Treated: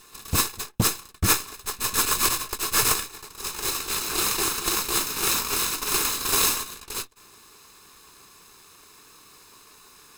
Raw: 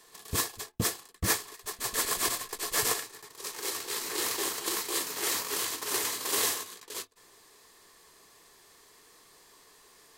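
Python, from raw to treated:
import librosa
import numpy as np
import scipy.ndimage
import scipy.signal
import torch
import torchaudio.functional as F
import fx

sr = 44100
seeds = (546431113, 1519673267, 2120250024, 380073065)

y = fx.lower_of_two(x, sr, delay_ms=0.78)
y = F.gain(torch.from_numpy(y), 8.5).numpy()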